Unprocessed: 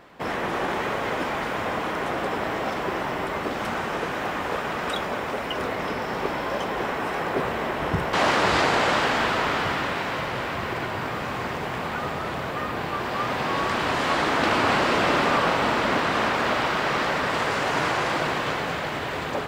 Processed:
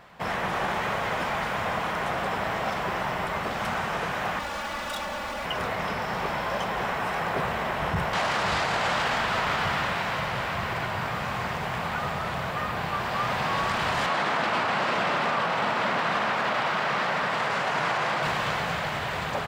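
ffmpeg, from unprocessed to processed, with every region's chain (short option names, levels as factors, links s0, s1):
-filter_complex "[0:a]asettb=1/sr,asplit=3[s0][s1][s2];[s0]atrim=end=4.394[s3];[s1]atrim=start=4.39:end=5.45,asetpts=PTS-STARTPTS,afade=t=in:d=0.004:c=qsin,afade=t=out:st=1.056:d=0.004:c=qsin,volume=37.6,asoftclip=hard,volume=0.0266,aecho=1:1:3.5:0.78,atrim=end_sample=46746[s4];[s2]atrim=start=5.446[s5];[s3][s4]acrossfade=d=0.004:c1=hsin:c2=qsin[s6];[s6][s5]acrossfade=d=0.004:c1=qsin:c2=hsin,asettb=1/sr,asplit=3[s7][s8][s9];[s7]atrim=end=14.064[s10];[s8]atrim=start=14.06:end=18.23,asetpts=PTS-STARTPTS,afade=t=in:d=0.004:c=qsin,afade=t=out:st=4.166:d=0.004:c=qsin,highpass=160,highshelf=f=5600:g=-8.5[s11];[s9]atrim=start=18.226[s12];[s10][s11]acrossfade=d=0.004:c1=hsin:c2=qsin[s13];[s13][s12]acrossfade=d=0.004:c1=qsin:c2=hsin,firequalizer=gain_entry='entry(190,0);entry(280,-11);entry(670,-1)':delay=0.05:min_phase=1,alimiter=limit=0.119:level=0:latency=1:release=14,volume=1.12"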